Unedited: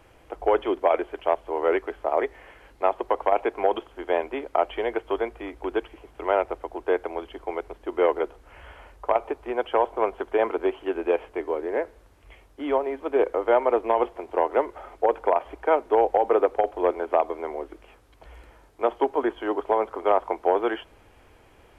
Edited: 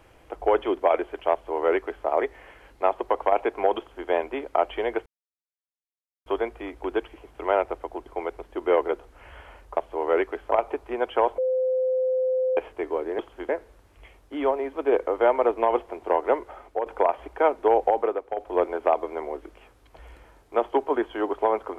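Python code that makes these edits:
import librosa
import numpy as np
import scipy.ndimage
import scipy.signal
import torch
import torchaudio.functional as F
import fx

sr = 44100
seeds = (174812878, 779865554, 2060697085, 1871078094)

y = fx.edit(x, sr, fx.duplicate(start_s=1.32, length_s=0.74, to_s=9.08),
    fx.duplicate(start_s=3.78, length_s=0.3, to_s=11.76),
    fx.insert_silence(at_s=5.06, length_s=1.2),
    fx.cut(start_s=6.86, length_s=0.51),
    fx.bleep(start_s=9.95, length_s=1.19, hz=515.0, db=-20.5),
    fx.fade_out_to(start_s=14.68, length_s=0.45, floor_db=-8.0),
    fx.fade_down_up(start_s=16.16, length_s=0.71, db=-11.0, fade_s=0.32), tone=tone)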